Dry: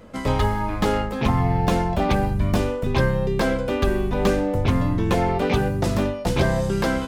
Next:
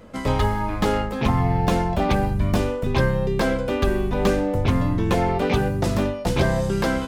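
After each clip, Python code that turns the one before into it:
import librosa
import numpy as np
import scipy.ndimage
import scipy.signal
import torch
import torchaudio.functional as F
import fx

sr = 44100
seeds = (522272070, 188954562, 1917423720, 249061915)

y = x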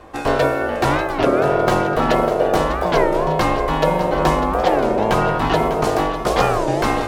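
y = x * np.sin(2.0 * np.pi * 550.0 * np.arange(len(x)) / sr)
y = fx.echo_feedback(y, sr, ms=599, feedback_pct=51, wet_db=-11.0)
y = fx.record_warp(y, sr, rpm=33.33, depth_cents=250.0)
y = F.gain(torch.from_numpy(y), 6.0).numpy()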